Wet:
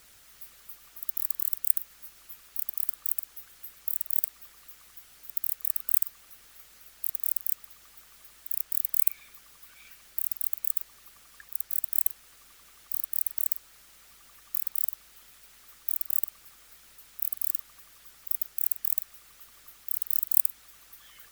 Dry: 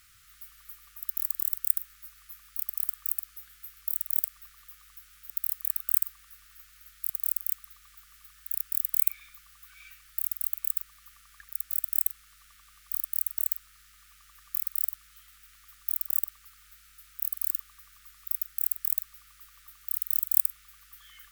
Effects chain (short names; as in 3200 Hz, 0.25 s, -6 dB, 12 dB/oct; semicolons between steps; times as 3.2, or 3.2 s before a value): added noise white -56 dBFS; harmonic-percussive split percussive +8 dB; gain -6.5 dB